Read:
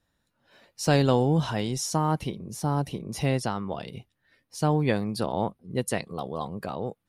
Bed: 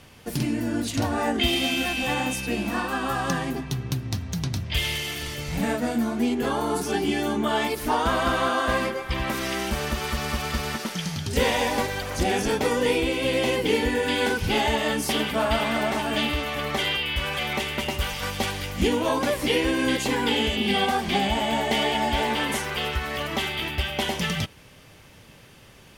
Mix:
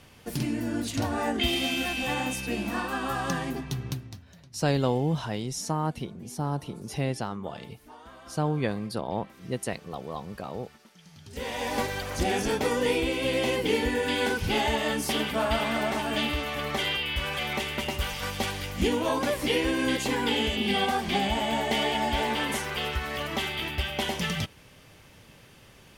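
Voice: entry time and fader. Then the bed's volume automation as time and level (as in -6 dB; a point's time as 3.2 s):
3.75 s, -3.5 dB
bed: 3.89 s -3.5 dB
4.37 s -25.5 dB
10.98 s -25.5 dB
11.79 s -3 dB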